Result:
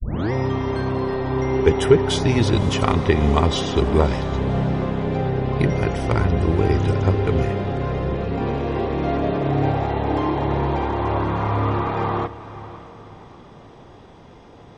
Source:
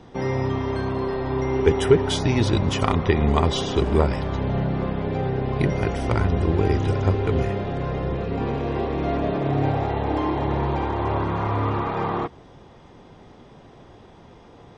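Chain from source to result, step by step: tape start-up on the opening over 0.32 s; echo that smears into a reverb 569 ms, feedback 40%, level -15 dB; trim +2 dB

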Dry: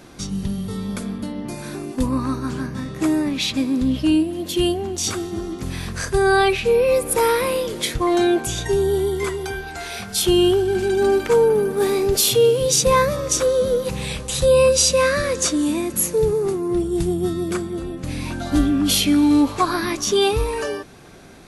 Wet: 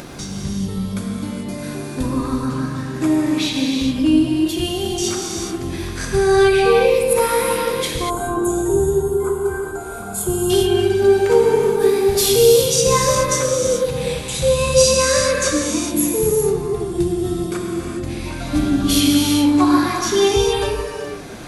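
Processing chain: upward compressor, threshold -25 dBFS; gated-style reverb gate 450 ms flat, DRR -1.5 dB; time-frequency box 8.10–10.50 s, 1.6–6.5 kHz -19 dB; trim -2 dB

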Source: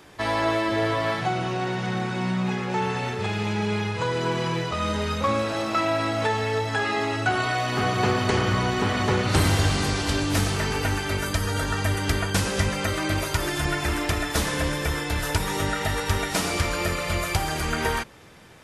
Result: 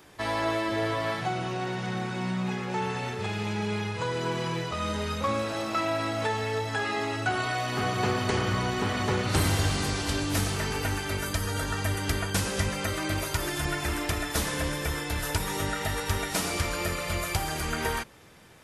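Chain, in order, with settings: treble shelf 10 kHz +7.5 dB; trim -4.5 dB

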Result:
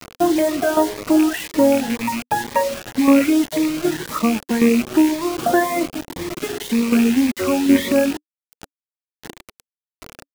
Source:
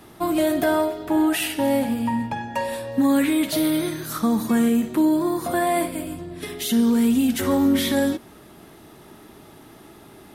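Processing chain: rattle on loud lows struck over -24 dBFS, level -16 dBFS; bass shelf 200 Hz +11.5 dB; speakerphone echo 300 ms, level -27 dB; in parallel at 0 dB: compression 20:1, threshold -28 dBFS, peak gain reduction 18 dB; on the sum: three-band isolator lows -20 dB, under 280 Hz, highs -22 dB, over 2.6 kHz; tremolo saw down 1.3 Hz, depth 55%; reverb removal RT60 0.94 s; bit crusher 6-bit; Shepard-style phaser rising 1.9 Hz; trim +8.5 dB

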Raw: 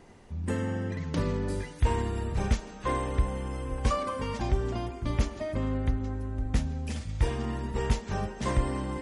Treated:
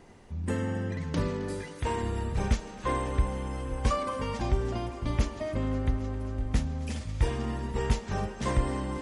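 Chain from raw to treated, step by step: 1.27–2.03 s: high-pass 170 Hz 6 dB/octave; thinning echo 266 ms, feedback 84%, high-pass 220 Hz, level -18 dB

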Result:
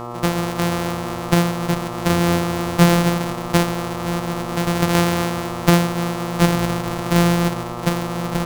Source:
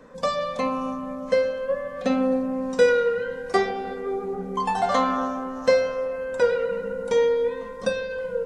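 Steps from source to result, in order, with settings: sorted samples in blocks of 256 samples; mains buzz 120 Hz, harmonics 11, -35 dBFS -1 dB/octave; pre-echo 264 ms -24 dB; trim +4.5 dB

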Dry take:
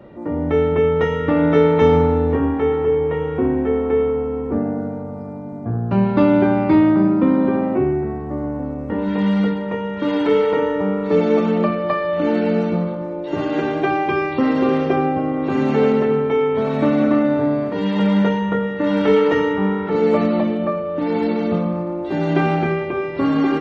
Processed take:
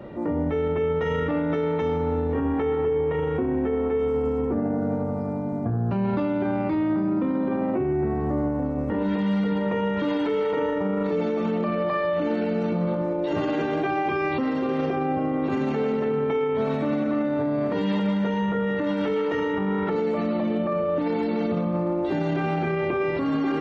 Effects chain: 3.99–4.45 s: tone controls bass +2 dB, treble +12 dB; in parallel at -3 dB: compressor with a negative ratio -22 dBFS; on the sum: peak limiter -14 dBFS, peak gain reduction 11.5 dB; trim -3.5 dB

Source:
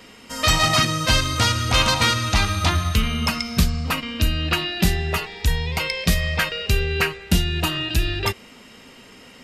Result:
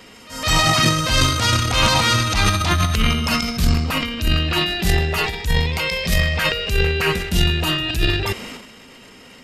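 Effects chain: reverse echo 164 ms -21 dB; transient shaper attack -8 dB, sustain +11 dB; trim +1.5 dB

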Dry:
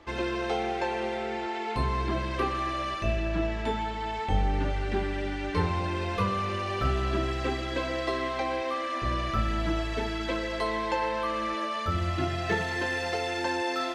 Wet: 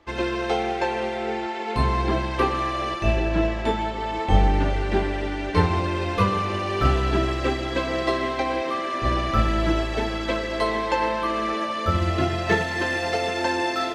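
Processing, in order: on a send: feedback echo behind a band-pass 772 ms, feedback 75%, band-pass 420 Hz, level -10 dB; on the sum: upward expansion 1.5:1, over -46 dBFS; trim +9 dB

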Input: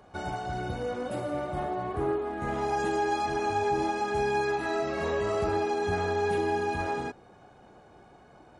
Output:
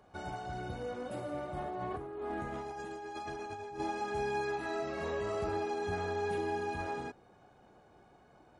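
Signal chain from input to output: 1.60–3.80 s: compressor with a negative ratio -34 dBFS, ratio -1; trim -7 dB

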